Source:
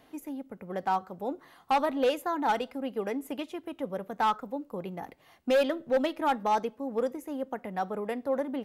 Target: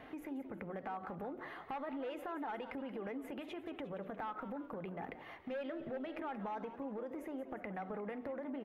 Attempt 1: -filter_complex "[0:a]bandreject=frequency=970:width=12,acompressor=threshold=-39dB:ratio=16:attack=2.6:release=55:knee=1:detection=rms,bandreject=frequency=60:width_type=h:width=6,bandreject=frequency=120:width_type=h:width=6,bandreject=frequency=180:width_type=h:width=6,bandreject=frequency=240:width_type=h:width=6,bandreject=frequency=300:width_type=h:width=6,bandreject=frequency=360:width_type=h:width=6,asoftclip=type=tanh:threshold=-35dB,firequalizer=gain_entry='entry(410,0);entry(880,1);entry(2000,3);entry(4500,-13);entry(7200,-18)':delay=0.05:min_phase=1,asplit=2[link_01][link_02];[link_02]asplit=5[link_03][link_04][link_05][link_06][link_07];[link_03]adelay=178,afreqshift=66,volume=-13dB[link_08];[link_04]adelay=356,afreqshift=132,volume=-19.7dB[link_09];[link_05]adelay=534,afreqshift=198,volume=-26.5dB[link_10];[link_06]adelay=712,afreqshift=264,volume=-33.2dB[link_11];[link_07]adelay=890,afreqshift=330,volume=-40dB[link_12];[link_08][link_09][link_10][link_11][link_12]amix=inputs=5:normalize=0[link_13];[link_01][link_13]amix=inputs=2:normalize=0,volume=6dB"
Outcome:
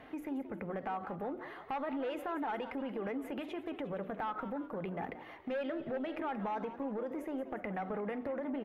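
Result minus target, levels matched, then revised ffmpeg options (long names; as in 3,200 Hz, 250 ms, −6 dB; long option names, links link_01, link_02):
downward compressor: peak gain reduction −5.5 dB
-filter_complex "[0:a]bandreject=frequency=970:width=12,acompressor=threshold=-45dB:ratio=16:attack=2.6:release=55:knee=1:detection=rms,bandreject=frequency=60:width_type=h:width=6,bandreject=frequency=120:width_type=h:width=6,bandreject=frequency=180:width_type=h:width=6,bandreject=frequency=240:width_type=h:width=6,bandreject=frequency=300:width_type=h:width=6,bandreject=frequency=360:width_type=h:width=6,asoftclip=type=tanh:threshold=-35dB,firequalizer=gain_entry='entry(410,0);entry(880,1);entry(2000,3);entry(4500,-13);entry(7200,-18)':delay=0.05:min_phase=1,asplit=2[link_01][link_02];[link_02]asplit=5[link_03][link_04][link_05][link_06][link_07];[link_03]adelay=178,afreqshift=66,volume=-13dB[link_08];[link_04]adelay=356,afreqshift=132,volume=-19.7dB[link_09];[link_05]adelay=534,afreqshift=198,volume=-26.5dB[link_10];[link_06]adelay=712,afreqshift=264,volume=-33.2dB[link_11];[link_07]adelay=890,afreqshift=330,volume=-40dB[link_12];[link_08][link_09][link_10][link_11][link_12]amix=inputs=5:normalize=0[link_13];[link_01][link_13]amix=inputs=2:normalize=0,volume=6dB"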